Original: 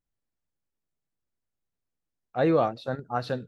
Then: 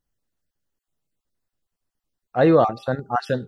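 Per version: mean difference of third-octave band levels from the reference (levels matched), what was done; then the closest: 2.0 dB: random spectral dropouts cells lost 21%; notch 2300 Hz, Q 11; de-hum 396.8 Hz, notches 3; gain +7 dB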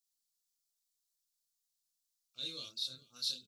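15.0 dB: inverse Chebyshev high-pass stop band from 2000 Hz, stop band 40 dB; chorus voices 2, 0.87 Hz, delay 29 ms, depth 1.6 ms; echo 0.423 s -22.5 dB; gain +14.5 dB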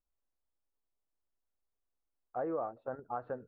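5.5 dB: LPF 1300 Hz 24 dB/oct; bell 150 Hz -14 dB 1.8 oct; compressor 3:1, threshold -36 dBFS, peak gain reduction 11.5 dB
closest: first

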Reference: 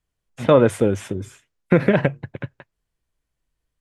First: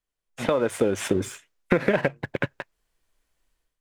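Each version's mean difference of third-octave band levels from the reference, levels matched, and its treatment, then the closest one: 7.5 dB: bell 96 Hz -12 dB 2.4 oct; compressor 12:1, threshold -25 dBFS, peak gain reduction 15 dB; sample leveller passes 1; AGC gain up to 13 dB; gain -3 dB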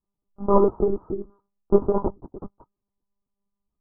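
10.0 dB: dynamic EQ 940 Hz, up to +7 dB, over -40 dBFS, Q 5.5; chorus voices 4, 0.92 Hz, delay 14 ms, depth 3 ms; rippled Chebyshev low-pass 1300 Hz, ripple 9 dB; monotone LPC vocoder at 8 kHz 200 Hz; gain +4.5 dB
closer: first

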